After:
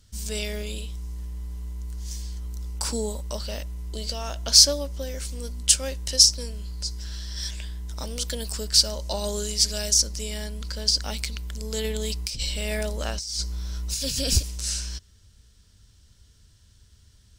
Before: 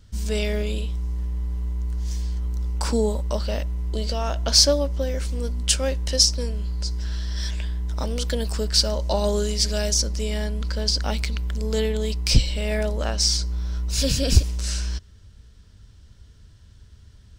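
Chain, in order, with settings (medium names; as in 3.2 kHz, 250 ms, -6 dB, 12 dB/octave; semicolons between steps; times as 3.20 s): peaking EQ 12 kHz +13.5 dB 2.5 oct; 11.84–14.30 s: compressor with a negative ratio -20 dBFS, ratio -1; trim -7.5 dB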